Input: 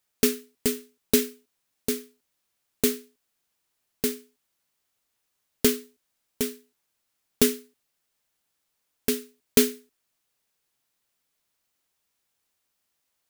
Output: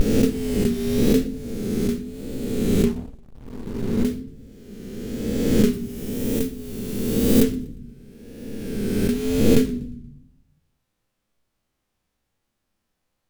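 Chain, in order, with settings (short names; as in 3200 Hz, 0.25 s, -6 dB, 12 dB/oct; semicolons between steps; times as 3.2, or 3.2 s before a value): spectral swells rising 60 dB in 1.81 s; on a send at -7 dB: reverb, pre-delay 4 ms; on the sum: vibrato 0.98 Hz 87 cents; tilt -3 dB/oct; in parallel at -0.5 dB: compressor, threshold -30 dBFS, peak gain reduction 23 dB; 2.84–4.05 on the sum: backlash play -20.5 dBFS; 5.73–7.43 high shelf 8800 Hz +11 dB; warbling echo 0.118 s, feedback 39%, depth 214 cents, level -22.5 dB; gain -5.5 dB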